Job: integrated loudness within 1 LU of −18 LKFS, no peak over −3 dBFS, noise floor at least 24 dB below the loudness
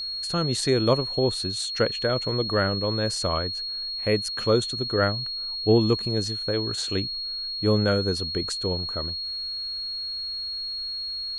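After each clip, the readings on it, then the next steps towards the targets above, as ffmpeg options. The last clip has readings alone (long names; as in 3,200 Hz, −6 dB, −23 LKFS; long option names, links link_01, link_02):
interfering tone 4,300 Hz; level of the tone −29 dBFS; integrated loudness −25.0 LKFS; sample peak −8.5 dBFS; target loudness −18.0 LKFS
→ -af "bandreject=frequency=4300:width=30"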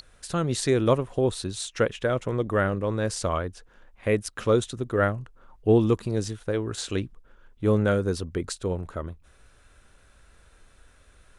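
interfering tone none found; integrated loudness −26.5 LKFS; sample peak −9.0 dBFS; target loudness −18.0 LKFS
→ -af "volume=8.5dB,alimiter=limit=-3dB:level=0:latency=1"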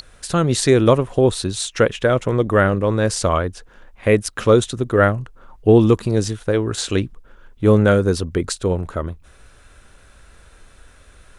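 integrated loudness −18.0 LKFS; sample peak −3.0 dBFS; background noise floor −49 dBFS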